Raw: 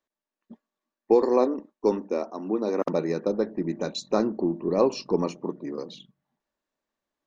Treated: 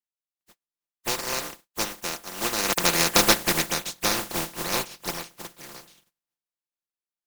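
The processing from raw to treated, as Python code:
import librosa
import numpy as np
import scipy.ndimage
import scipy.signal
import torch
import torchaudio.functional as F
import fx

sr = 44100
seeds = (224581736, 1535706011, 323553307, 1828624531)

y = fx.spec_flatten(x, sr, power=0.17)
y = fx.doppler_pass(y, sr, speed_mps=12, closest_m=4.2, pass_at_s=3.24)
y = y + 0.44 * np.pad(y, (int(5.8 * sr / 1000.0), 0))[:len(y)]
y = y * librosa.db_to_amplitude(6.5)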